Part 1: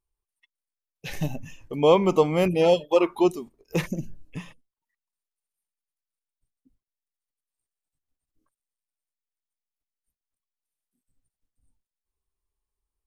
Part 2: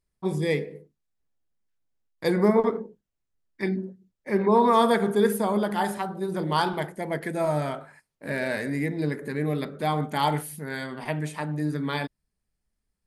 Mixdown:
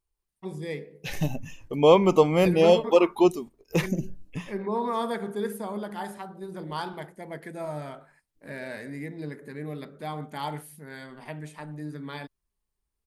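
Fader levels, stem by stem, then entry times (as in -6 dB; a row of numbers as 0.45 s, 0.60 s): +1.0 dB, -9.0 dB; 0.00 s, 0.20 s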